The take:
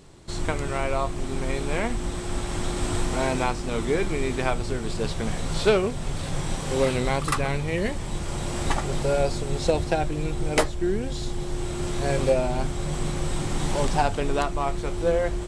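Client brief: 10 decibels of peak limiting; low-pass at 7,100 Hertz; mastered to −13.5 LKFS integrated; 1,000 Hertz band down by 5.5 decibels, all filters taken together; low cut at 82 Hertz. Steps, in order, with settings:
high-pass filter 82 Hz
low-pass filter 7,100 Hz
parametric band 1,000 Hz −8 dB
level +17.5 dB
brickwall limiter −3 dBFS

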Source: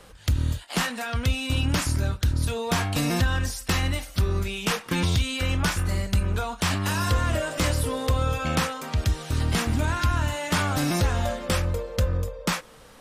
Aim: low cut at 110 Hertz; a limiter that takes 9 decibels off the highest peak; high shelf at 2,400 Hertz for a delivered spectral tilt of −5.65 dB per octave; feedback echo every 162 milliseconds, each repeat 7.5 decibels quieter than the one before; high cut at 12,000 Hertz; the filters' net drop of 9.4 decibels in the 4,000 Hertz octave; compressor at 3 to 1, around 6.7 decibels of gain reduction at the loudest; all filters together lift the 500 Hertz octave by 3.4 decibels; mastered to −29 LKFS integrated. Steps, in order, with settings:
high-pass filter 110 Hz
low-pass filter 12,000 Hz
parametric band 500 Hz +4.5 dB
high-shelf EQ 2,400 Hz −8.5 dB
parametric band 4,000 Hz −5 dB
downward compressor 3 to 1, threshold −30 dBFS
brickwall limiter −25.5 dBFS
repeating echo 162 ms, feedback 42%, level −7.5 dB
level +5.5 dB

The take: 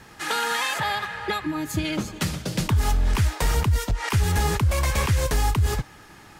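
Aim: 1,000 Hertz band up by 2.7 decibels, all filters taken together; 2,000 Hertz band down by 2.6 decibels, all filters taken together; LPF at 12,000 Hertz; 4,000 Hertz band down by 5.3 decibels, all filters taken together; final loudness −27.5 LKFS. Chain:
low-pass filter 12,000 Hz
parametric band 1,000 Hz +4.5 dB
parametric band 2,000 Hz −3.5 dB
parametric band 4,000 Hz −6 dB
level −3 dB

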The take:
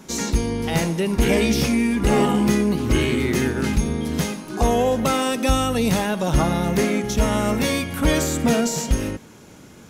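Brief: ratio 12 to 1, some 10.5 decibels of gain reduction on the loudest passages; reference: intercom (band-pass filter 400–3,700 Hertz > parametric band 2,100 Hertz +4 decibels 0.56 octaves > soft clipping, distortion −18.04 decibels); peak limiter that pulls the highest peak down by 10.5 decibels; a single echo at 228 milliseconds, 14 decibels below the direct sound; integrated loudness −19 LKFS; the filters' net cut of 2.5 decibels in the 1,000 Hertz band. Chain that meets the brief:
parametric band 1,000 Hz −3.5 dB
downward compressor 12 to 1, threshold −24 dBFS
brickwall limiter −25 dBFS
band-pass filter 400–3,700 Hz
parametric band 2,100 Hz +4 dB 0.56 octaves
single-tap delay 228 ms −14 dB
soft clipping −30 dBFS
level +20 dB

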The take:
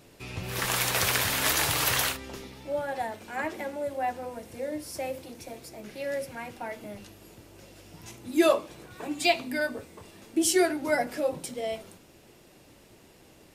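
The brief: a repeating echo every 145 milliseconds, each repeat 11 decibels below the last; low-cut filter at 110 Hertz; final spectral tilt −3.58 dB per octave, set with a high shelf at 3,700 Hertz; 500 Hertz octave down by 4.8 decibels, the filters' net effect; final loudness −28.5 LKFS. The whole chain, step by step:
high-pass filter 110 Hz
parametric band 500 Hz −6.5 dB
high-shelf EQ 3,700 Hz −7 dB
repeating echo 145 ms, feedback 28%, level −11 dB
level +3.5 dB

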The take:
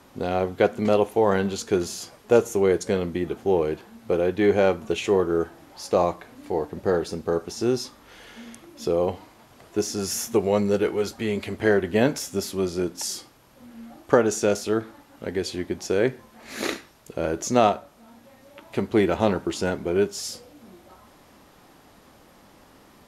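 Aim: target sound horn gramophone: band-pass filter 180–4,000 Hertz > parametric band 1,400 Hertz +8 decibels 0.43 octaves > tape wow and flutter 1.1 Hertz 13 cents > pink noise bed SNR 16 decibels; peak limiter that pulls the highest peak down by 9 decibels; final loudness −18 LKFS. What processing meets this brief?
brickwall limiter −11.5 dBFS
band-pass filter 180–4,000 Hz
parametric band 1,400 Hz +8 dB 0.43 octaves
tape wow and flutter 1.1 Hz 13 cents
pink noise bed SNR 16 dB
level +8 dB

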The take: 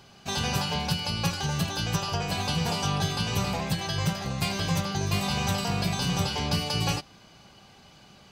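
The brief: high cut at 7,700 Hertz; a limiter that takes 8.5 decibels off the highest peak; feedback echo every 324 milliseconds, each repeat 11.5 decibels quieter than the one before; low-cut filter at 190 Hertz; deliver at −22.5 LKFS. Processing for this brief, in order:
high-pass filter 190 Hz
low-pass filter 7,700 Hz
brickwall limiter −24 dBFS
repeating echo 324 ms, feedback 27%, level −11.5 dB
level +9.5 dB

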